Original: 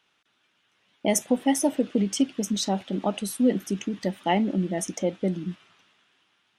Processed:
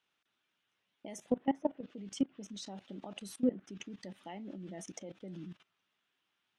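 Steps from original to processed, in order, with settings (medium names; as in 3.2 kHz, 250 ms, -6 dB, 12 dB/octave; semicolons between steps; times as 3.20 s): level held to a coarse grid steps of 19 dB; low-pass that closes with the level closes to 1.6 kHz, closed at -24 dBFS; trim -6.5 dB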